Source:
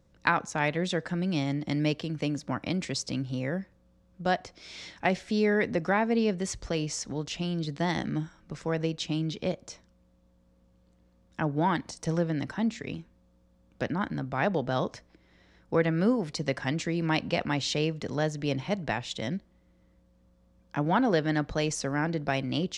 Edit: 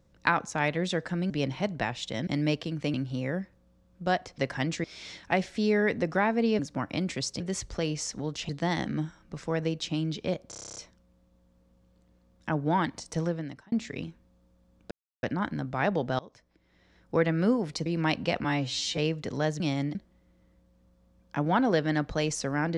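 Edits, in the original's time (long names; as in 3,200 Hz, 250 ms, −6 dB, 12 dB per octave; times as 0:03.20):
0:01.30–0:01.65: swap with 0:18.38–0:19.35
0:02.32–0:03.13: move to 0:06.32
0:07.41–0:07.67: remove
0:09.67: stutter 0.03 s, 10 plays
0:12.06–0:12.63: fade out
0:13.82: splice in silence 0.32 s
0:14.78–0:15.75: fade in, from −24 dB
0:16.45–0:16.91: move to 0:04.57
0:17.49–0:17.76: time-stretch 2×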